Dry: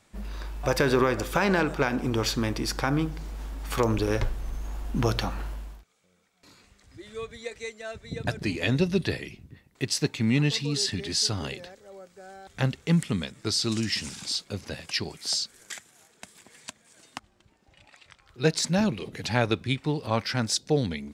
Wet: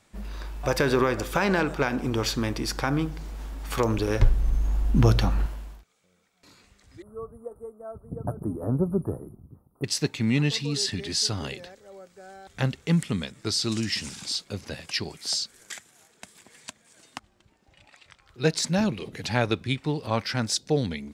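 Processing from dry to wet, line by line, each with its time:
4.2–5.46 low shelf 240 Hz +10.5 dB
7.02–9.84 Chebyshev band-stop 1300–9500 Hz, order 5

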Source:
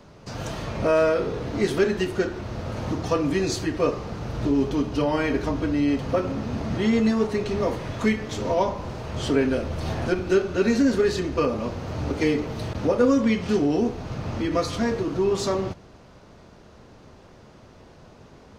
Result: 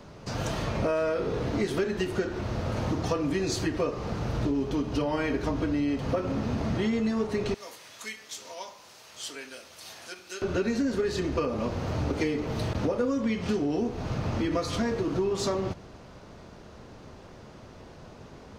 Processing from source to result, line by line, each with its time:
7.54–10.42 differentiator
whole clip: compressor, threshold -26 dBFS; gain +1.5 dB

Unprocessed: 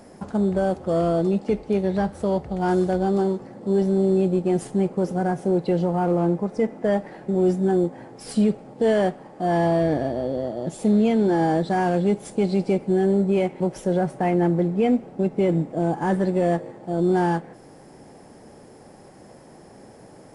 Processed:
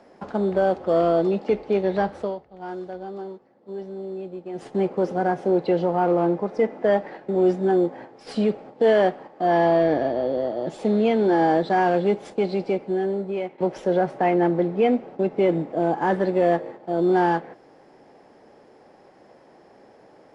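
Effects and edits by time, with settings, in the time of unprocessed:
2.16–4.73 dip -13.5 dB, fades 0.20 s
9.47–10.25 LPF 7600 Hz
12.11–13.58 fade out, to -10 dB
whole clip: gate -39 dBFS, range -6 dB; three-band isolator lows -12 dB, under 290 Hz, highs -23 dB, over 5100 Hz; gain +3.5 dB

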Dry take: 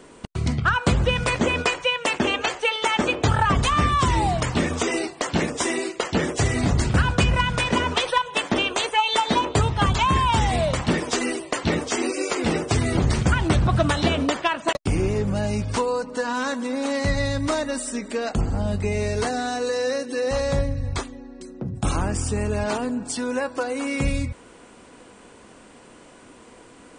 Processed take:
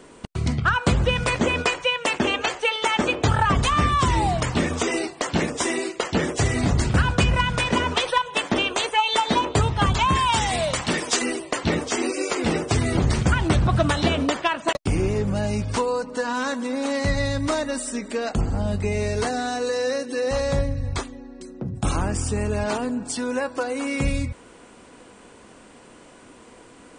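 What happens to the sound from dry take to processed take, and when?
10.15–11.22 tilt +2 dB/oct

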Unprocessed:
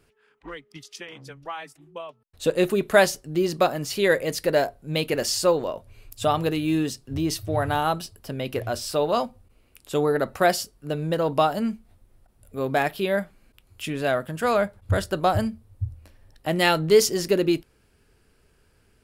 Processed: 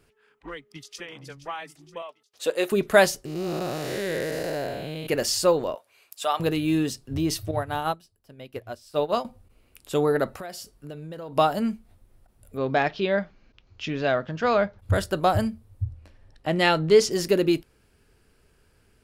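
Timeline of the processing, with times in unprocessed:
0.51–1.14 echo throw 0.47 s, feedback 60%, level -13.5 dB
2.02–2.72 HPF 470 Hz
3.25–5.07 time blur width 0.358 s
5.75–6.4 HPF 730 Hz
7.51–9.25 upward expander 2.5:1, over -33 dBFS
10.3–11.37 compressor, threshold -35 dBFS
12.57–14.79 steep low-pass 6400 Hz 72 dB/oct
15.84–17.11 air absorption 61 m

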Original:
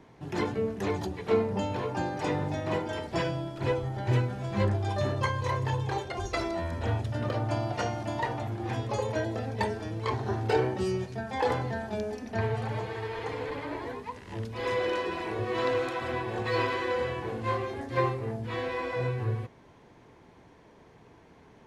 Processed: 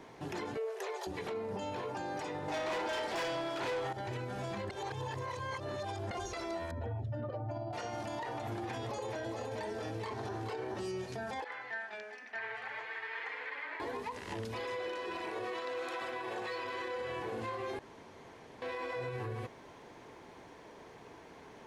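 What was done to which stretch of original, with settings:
0.57–1.07 brick-wall FIR high-pass 360 Hz
2.48–3.93 overdrive pedal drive 26 dB, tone 4100 Hz, clips at -16 dBFS
4.7–6.11 reverse
6.71–7.73 spectral contrast raised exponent 1.7
8.43–10.88 echo 0.427 s -5.5 dB
11.44–13.8 band-pass 1900 Hz, Q 2.5
15.3–16.65 HPF 340 Hz 6 dB/oct
17.79–18.62 room tone
whole clip: tone controls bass -9 dB, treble +2 dB; compressor, threshold -37 dBFS; limiter -35.5 dBFS; gain +4.5 dB

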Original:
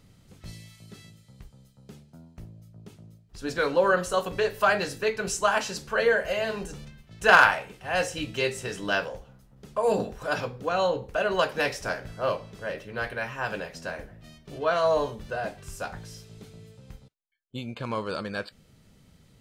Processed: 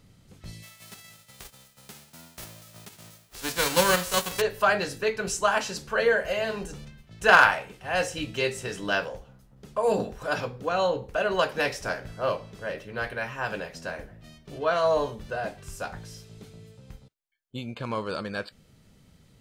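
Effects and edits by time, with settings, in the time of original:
0.62–4.4 spectral whitening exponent 0.3

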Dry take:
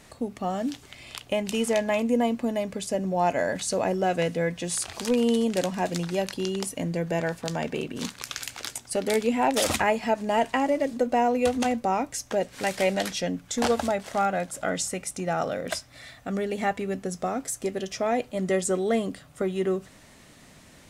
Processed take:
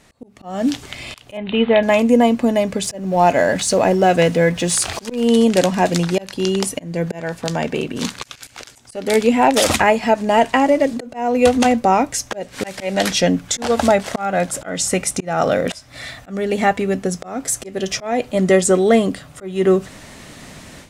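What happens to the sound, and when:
1.37–1.83 steep low-pass 3900 Hz 96 dB/oct
2.84–5.27 G.711 law mismatch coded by mu
whole clip: high shelf 12000 Hz -5.5 dB; auto swell 0.296 s; AGC gain up to 14 dB

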